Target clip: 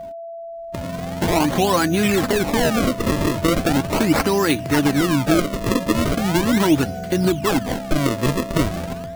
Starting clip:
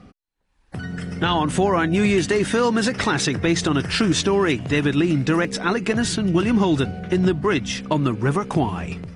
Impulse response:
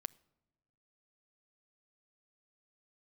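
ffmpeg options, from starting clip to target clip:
-af "crystalizer=i=1:c=0,acrusher=samples=33:mix=1:aa=0.000001:lfo=1:lforange=52.8:lforate=0.39,flanger=delay=3:depth=1.1:regen=59:speed=1.5:shape=triangular,aeval=exprs='val(0)+0.0158*sin(2*PI*670*n/s)':channel_layout=same,volume=5.5dB"

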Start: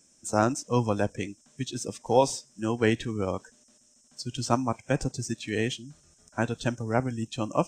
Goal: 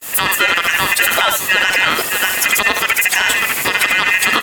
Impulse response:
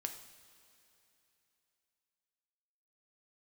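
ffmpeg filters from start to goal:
-filter_complex "[0:a]aeval=exprs='val(0)+0.5*0.0178*sgn(val(0))':channel_layout=same,aresample=22050,aresample=44100,aeval=exprs='val(0)*sin(2*PI*1300*n/s)':channel_layout=same,asplit=2[link_01][link_02];[link_02]aecho=0:1:1032|2064:0.2|0.0439[link_03];[link_01][link_03]amix=inputs=2:normalize=0,acompressor=threshold=-30dB:ratio=10,highpass=frequency=87:poles=1,asplit=2[link_04][link_05];[link_05]adelay=120,highpass=300,lowpass=3400,asoftclip=type=hard:threshold=-29dB,volume=-6dB[link_06];[link_04][link_06]amix=inputs=2:normalize=0,asetrate=76440,aresample=44100,agate=range=-41dB:threshold=-43dB:ratio=16:detection=peak,asplit=2[link_07][link_08];[link_08]adynamicsmooth=sensitivity=3.5:basefreq=1100,volume=1dB[link_09];[link_07][link_09]amix=inputs=2:normalize=0,alimiter=level_in=23.5dB:limit=-1dB:release=50:level=0:latency=1,volume=-1dB" -ar 44100 -c:a ac3 -b:a 128k

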